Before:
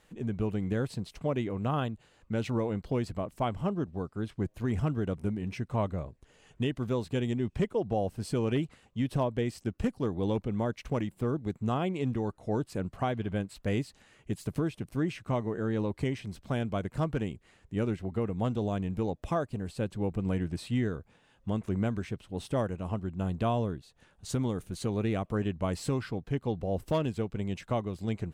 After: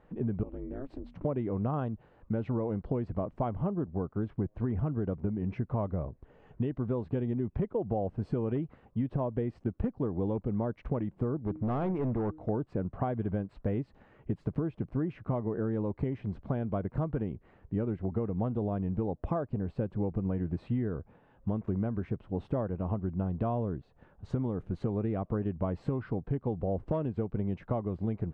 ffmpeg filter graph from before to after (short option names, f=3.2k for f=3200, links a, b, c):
-filter_complex "[0:a]asettb=1/sr,asplit=3[a][b][c];[a]atrim=end=0.434[d];[b]atrim=start=0.43:end=1.25,asetpts=PTS-STARTPTS,afade=t=in:d=0.004:c=qsin,afade=t=out:st=0.816:d=0.004:c=qsin,bandreject=f=50:t=h:w=6,bandreject=f=100:t=h:w=6,acompressor=threshold=-38dB:ratio=6:attack=3.2:release=140:knee=1:detection=peak,aeval=exprs='val(0)*sin(2*PI*140*n/s)':c=same[e];[c]atrim=start=1.246[f];[d][e]acrossfade=d=0.004:c1=hsin:c2=qsin[g];[g][f]acrossfade=d=0.004:c1=qsin:c2=hsin,asettb=1/sr,asplit=3[h][i][j];[h]atrim=end=11.404[k];[i]atrim=start=11.4:end=12.49,asetpts=PTS-STARTPTS,afade=t=in:d=0.004:c=qsin,afade=t=out:st=1.086:d=0.004:c=qsin,bandreject=f=155.6:t=h:w=4,bandreject=f=311.2:t=h:w=4,bandreject=f=466.8:t=h:w=4,asoftclip=type=hard:threshold=-31dB[l];[j]atrim=start=12.486[m];[k][l]acrossfade=d=0.004:c1=hsin:c2=qsin[n];[n][m]acrossfade=d=0.004:c1=qsin:c2=hsin,lowpass=1.1k,acompressor=threshold=-33dB:ratio=6,volume=5.5dB"